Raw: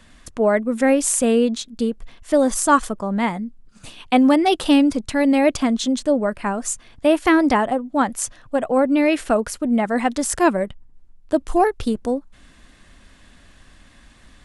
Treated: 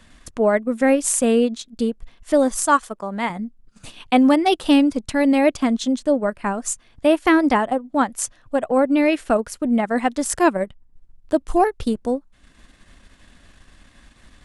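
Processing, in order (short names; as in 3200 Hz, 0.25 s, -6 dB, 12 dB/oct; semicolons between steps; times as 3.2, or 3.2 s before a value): 2.65–3.3 low shelf 280 Hz -10.5 dB; transient shaper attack 0 dB, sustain -7 dB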